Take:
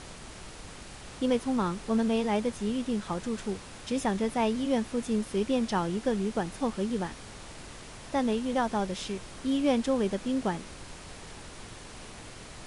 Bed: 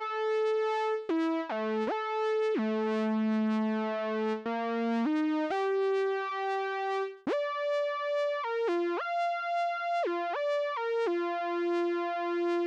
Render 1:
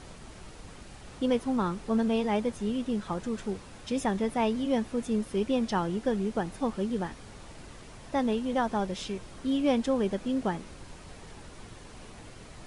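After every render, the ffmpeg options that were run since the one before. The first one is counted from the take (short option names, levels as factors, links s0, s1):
-af "afftdn=nr=6:nf=-46"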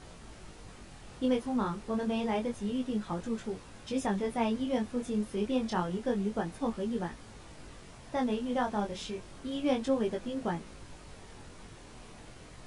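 -af "flanger=delay=17.5:depth=6.9:speed=0.29"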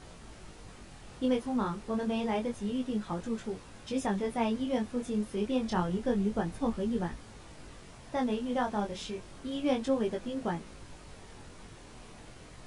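-filter_complex "[0:a]asettb=1/sr,asplit=3[s0][s1][s2];[s0]atrim=end=5.684[s3];[s1]atrim=start=5.68:end=7.2,asetpts=PTS-STARTPTS,afade=t=in:d=0.004:c=qsin,afade=t=out:st=1.516:d=0.004:c=qsin,lowshelf=f=150:g=7.5[s4];[s2]atrim=start=7.196[s5];[s3][s4]acrossfade=d=0.004:c1=hsin:c2=qsin[s6];[s6][s5]acrossfade=d=0.004:c1=qsin:c2=hsin"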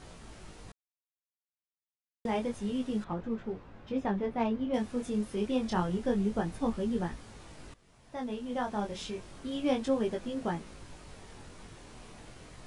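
-filter_complex "[0:a]asettb=1/sr,asplit=3[s0][s1][s2];[s0]atrim=end=3.044[s3];[s1]atrim=start=3.04:end=4.74,asetpts=PTS-STARTPTS,afade=t=in:d=0.004:c=qsin,afade=t=out:st=1.696:d=0.004:c=qsin,adynamicsmooth=sensitivity=2:basefreq=2100[s4];[s2]atrim=start=4.736[s5];[s3][s4]acrossfade=d=0.004:c1=hsin:c2=qsin[s6];[s6][s5]acrossfade=d=0.004:c1=qsin:c2=hsin,asplit=4[s7][s8][s9][s10];[s7]atrim=end=0.72,asetpts=PTS-STARTPTS,afade=t=out:st=0.716:d=0.004:c=hsin[s11];[s8]atrim=start=0.72:end=2.25,asetpts=PTS-STARTPTS,volume=0[s12];[s9]atrim=start=2.25:end=7.74,asetpts=PTS-STARTPTS,afade=t=in:d=0.004:c=hsin,afade=t=out:st=5.486:d=0.004:c=hsin:silence=0.141254[s13];[s10]atrim=start=7.74,asetpts=PTS-STARTPTS,afade=t=in:d=1.26:silence=0.141254[s14];[s11][s12][s13][s14]concat=n=4:v=0:a=1"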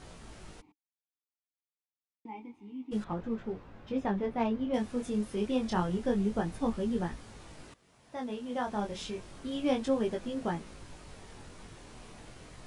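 -filter_complex "[0:a]asplit=3[s0][s1][s2];[s0]afade=t=out:st=0.6:d=0.02[s3];[s1]asplit=3[s4][s5][s6];[s4]bandpass=f=300:t=q:w=8,volume=1[s7];[s5]bandpass=f=870:t=q:w=8,volume=0.501[s8];[s6]bandpass=f=2240:t=q:w=8,volume=0.355[s9];[s7][s8][s9]amix=inputs=3:normalize=0,afade=t=in:st=0.6:d=0.02,afade=t=out:st=2.91:d=0.02[s10];[s2]afade=t=in:st=2.91:d=0.02[s11];[s3][s10][s11]amix=inputs=3:normalize=0,asettb=1/sr,asplit=3[s12][s13][s14];[s12]atrim=end=7.634[s15];[s13]atrim=start=7.63:end=8.67,asetpts=PTS-STARTPTS,afade=t=in:d=0.004:c=qsin,afade=t=out:st=1.036:d=0.004:c=qsin,highpass=f=130:p=1[s16];[s14]atrim=start=8.666[s17];[s15][s16]acrossfade=d=0.004:c1=hsin:c2=qsin[s18];[s18][s17]acrossfade=d=0.004:c1=qsin:c2=hsin"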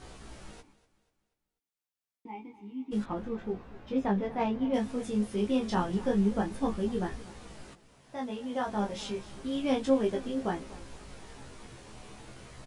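-filter_complex "[0:a]asplit=2[s0][s1];[s1]adelay=15,volume=0.631[s2];[s0][s2]amix=inputs=2:normalize=0,aecho=1:1:243|486|729|972:0.126|0.0541|0.0233|0.01"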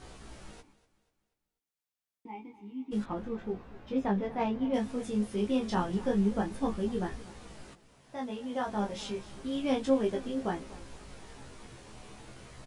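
-af "volume=0.891"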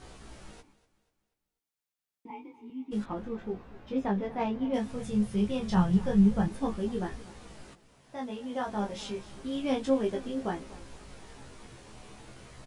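-filter_complex "[0:a]asettb=1/sr,asplit=3[s0][s1][s2];[s0]atrim=end=2.304[s3];[s1]atrim=start=2.3:end=2.7,asetpts=PTS-STARTPTS,afade=t=in:d=0.004:c=qsin,afade=t=out:st=0.396:d=0.004:c=qsin,afreqshift=31[s4];[s2]atrim=start=2.696[s5];[s3][s4]acrossfade=d=0.004:c1=hsin:c2=qsin[s6];[s6][s5]acrossfade=d=0.004:c1=qsin:c2=hsin,asettb=1/sr,asplit=3[s7][s8][s9];[s7]atrim=end=4.924[s10];[s8]atrim=start=4.92:end=6.48,asetpts=PTS-STARTPTS,afade=t=in:d=0.004:c=qsin,afade=t=out:st=1.556:d=0.004:c=qsin,lowshelf=f=210:t=q:w=3:g=7[s11];[s9]atrim=start=6.476[s12];[s10][s11]acrossfade=d=0.004:c1=hsin:c2=qsin[s13];[s13][s12]acrossfade=d=0.004:c1=qsin:c2=hsin"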